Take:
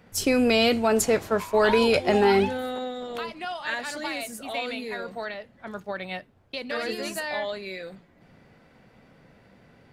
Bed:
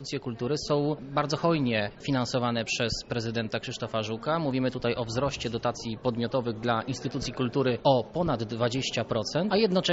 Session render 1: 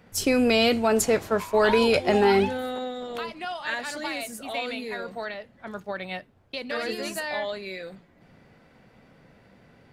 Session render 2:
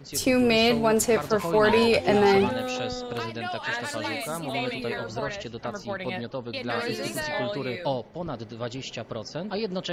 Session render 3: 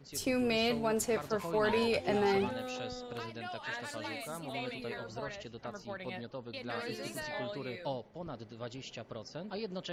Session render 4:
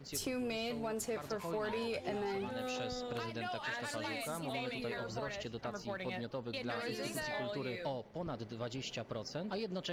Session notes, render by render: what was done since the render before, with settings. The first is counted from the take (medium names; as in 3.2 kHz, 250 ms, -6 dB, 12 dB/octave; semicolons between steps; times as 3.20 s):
no audible change
add bed -6 dB
trim -10 dB
compression 5:1, threshold -39 dBFS, peak gain reduction 12.5 dB; waveshaping leveller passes 1